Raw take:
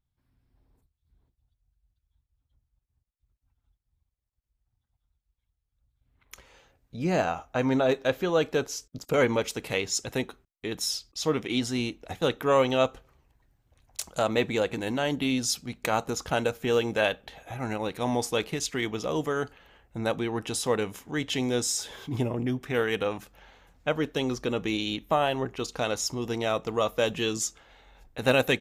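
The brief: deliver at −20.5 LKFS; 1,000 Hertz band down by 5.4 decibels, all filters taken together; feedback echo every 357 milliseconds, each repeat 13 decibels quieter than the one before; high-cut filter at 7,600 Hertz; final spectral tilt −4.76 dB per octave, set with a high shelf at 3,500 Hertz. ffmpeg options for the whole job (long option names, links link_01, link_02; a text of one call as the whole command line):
ffmpeg -i in.wav -af "lowpass=7600,equalizer=frequency=1000:width_type=o:gain=-7.5,highshelf=frequency=3500:gain=-3.5,aecho=1:1:357|714|1071:0.224|0.0493|0.0108,volume=9.5dB" out.wav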